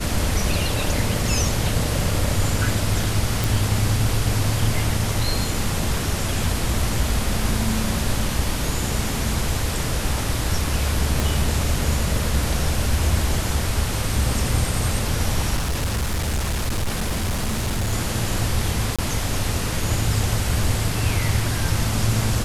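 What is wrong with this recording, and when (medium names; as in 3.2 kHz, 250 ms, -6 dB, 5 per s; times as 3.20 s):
3.44 s: pop
11.20 s: pop
15.56–17.93 s: clipped -19 dBFS
18.96–18.99 s: dropout 26 ms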